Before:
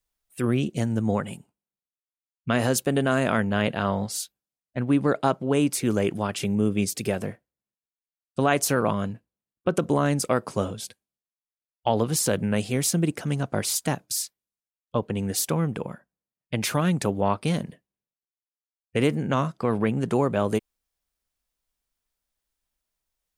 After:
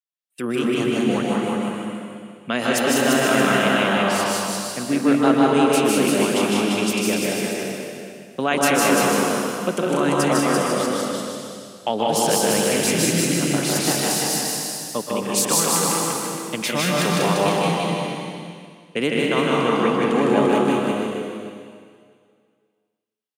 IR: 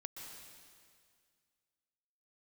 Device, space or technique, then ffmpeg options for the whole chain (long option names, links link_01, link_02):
stadium PA: -filter_complex "[0:a]agate=range=-17dB:threshold=-44dB:ratio=16:detection=peak,asettb=1/sr,asplit=3[link_01][link_02][link_03];[link_01]atrim=end=15.164[link_04];[link_02]atrim=start=15.16:end=15.82,asetpts=PTS-STARTPTS,afade=type=in:duration=0.004:curve=qsin,afade=type=out:start_time=0.656:duration=0.004:curve=qsin,equalizer=frequency=125:width_type=o:width=1:gain=-7,equalizer=frequency=1000:width_type=o:width=1:gain=8,equalizer=frequency=8000:width_type=o:width=1:gain=7[link_05];[link_03]atrim=start=15.816[link_06];[link_04][link_05]acrossfade=duration=0.004:curve1=hsin:curve2=qsin[link_07];[link_07][link_06]acrossfade=duration=0.004:curve1=qsin:curve2=hsin,highpass=frequency=170:width=0.5412,highpass=frequency=170:width=1.3066,equalizer=frequency=3000:width_type=o:width=1.2:gain=5.5,aecho=1:1:154.5|218.7:0.794|0.355[link_08];[1:a]atrim=start_sample=2205[link_09];[link_08][link_09]afir=irnorm=-1:irlink=0,aecho=1:1:190|342|463.6|560.9|638.7:0.631|0.398|0.251|0.158|0.1,volume=5dB"